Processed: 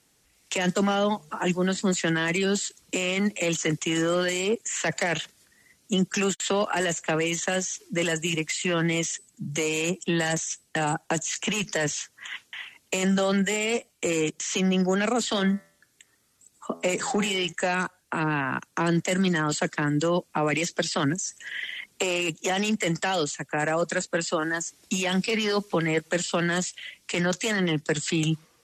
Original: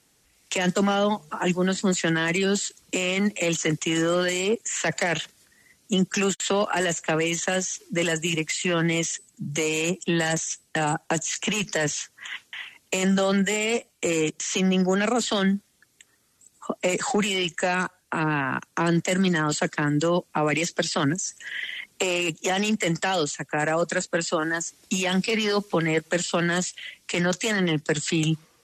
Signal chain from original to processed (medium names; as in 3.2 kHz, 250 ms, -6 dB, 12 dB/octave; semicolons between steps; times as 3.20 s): 15.27–17.53 s: de-hum 83.61 Hz, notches 26; trim -1.5 dB